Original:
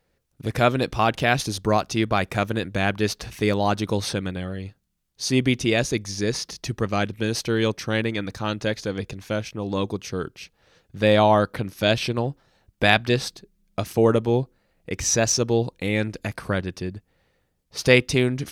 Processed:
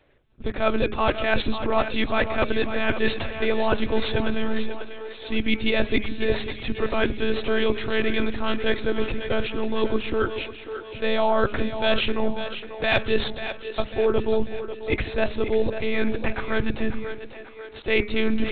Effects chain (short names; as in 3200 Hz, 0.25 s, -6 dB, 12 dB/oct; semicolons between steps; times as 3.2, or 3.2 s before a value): monotone LPC vocoder at 8 kHz 220 Hz; de-hum 207.4 Hz, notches 12; reverse; compressor 6:1, threshold -27 dBFS, peak gain reduction 16.5 dB; reverse; bell 180 Hz -11.5 dB 0.25 oct; split-band echo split 310 Hz, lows 0.14 s, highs 0.543 s, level -10 dB; gain +9 dB